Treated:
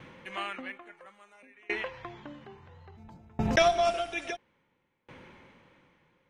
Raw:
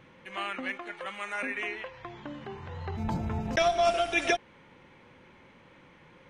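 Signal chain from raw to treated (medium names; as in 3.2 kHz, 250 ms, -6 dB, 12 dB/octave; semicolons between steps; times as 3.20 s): 0.61–1.52 s: peaking EQ 7.8 kHz -> 1.2 kHz -11.5 dB 0.65 oct; sawtooth tremolo in dB decaying 0.59 Hz, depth 32 dB; trim +7 dB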